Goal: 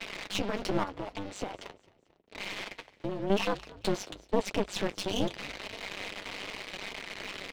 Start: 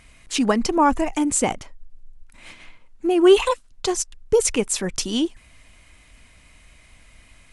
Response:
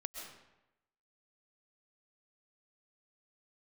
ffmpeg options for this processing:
-filter_complex "[0:a]aeval=exprs='val(0)+0.5*0.0841*sgn(val(0))':channel_layout=same,highpass=frequency=350:width=0.5412,highpass=frequency=350:width=1.3066,agate=range=-33dB:threshold=-31dB:ratio=3:detection=peak,lowpass=frequency=3900:width=0.5412,lowpass=frequency=3900:width=1.3066,equalizer=frequency=1500:width_type=o:width=2.7:gain=-9.5,asettb=1/sr,asplit=3[link_01][link_02][link_03];[link_01]atrim=end=0.834[link_04];[link_02]atrim=start=0.83:end=3.3,asetpts=PTS-STARTPTS,afade=type=in:duration=0.004:curve=qsin,afade=type=out:start_time=2.466:duration=0.004:curve=qsin,acompressor=threshold=-32dB:ratio=16[link_05];[link_03]atrim=start=3.296[link_06];[link_04][link_05]acrossfade=duration=0.004:curve1=hsin:curve2=qsin[link_07];[link_07][link_06]acrossfade=duration=0.004:curve1=qsin:curve2=hsin,alimiter=limit=-19dB:level=0:latency=1:release=117,aeval=exprs='clip(val(0),-1,0.00891)':channel_layout=same,flanger=delay=4.4:depth=6.6:regen=-39:speed=0.87:shape=sinusoidal,tremolo=f=200:d=0.974,asplit=4[link_08][link_09][link_10][link_11];[link_09]adelay=221,afreqshift=-54,volume=-21.5dB[link_12];[link_10]adelay=442,afreqshift=-108,volume=-29.2dB[link_13];[link_11]adelay=663,afreqshift=-162,volume=-37dB[link_14];[link_08][link_12][link_13][link_14]amix=inputs=4:normalize=0,volume=9dB"

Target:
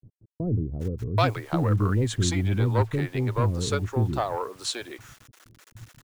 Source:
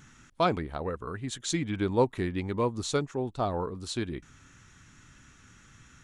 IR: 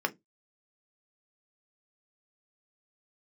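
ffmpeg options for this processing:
-filter_complex "[0:a]agate=range=-17dB:threshold=-52dB:ratio=16:detection=peak,equalizer=frequency=110:width_type=o:width=0.38:gain=14,asplit=2[link_01][link_02];[link_02]acompressor=threshold=-36dB:ratio=6,volume=0dB[link_03];[link_01][link_03]amix=inputs=2:normalize=0,acrusher=bits=8:mix=0:aa=0.000001,acrossover=split=2800[link_04][link_05];[link_04]asoftclip=type=tanh:threshold=-19dB[link_06];[link_06][link_05]amix=inputs=2:normalize=0,acrossover=split=400[link_07][link_08];[link_08]adelay=780[link_09];[link_07][link_09]amix=inputs=2:normalize=0,adynamicequalizer=threshold=0.00398:dfrequency=2500:dqfactor=0.7:tfrequency=2500:tqfactor=0.7:attack=5:release=100:ratio=0.375:range=2.5:mode=cutabove:tftype=highshelf,volume=4dB"

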